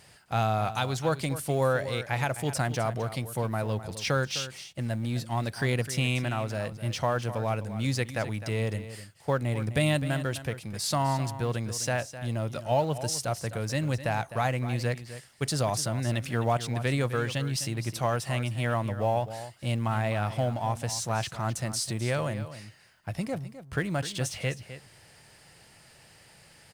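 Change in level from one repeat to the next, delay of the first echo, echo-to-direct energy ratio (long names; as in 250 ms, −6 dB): repeats not evenly spaced, 257 ms, −13.0 dB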